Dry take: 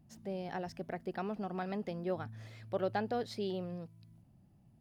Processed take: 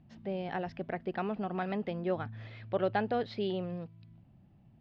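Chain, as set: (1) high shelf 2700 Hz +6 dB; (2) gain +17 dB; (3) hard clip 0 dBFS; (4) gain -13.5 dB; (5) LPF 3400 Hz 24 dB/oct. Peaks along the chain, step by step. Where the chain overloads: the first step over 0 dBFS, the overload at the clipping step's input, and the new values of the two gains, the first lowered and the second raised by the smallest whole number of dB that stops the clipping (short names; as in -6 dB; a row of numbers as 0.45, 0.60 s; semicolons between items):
-21.5, -4.5, -4.5, -18.0, -18.0 dBFS; no overload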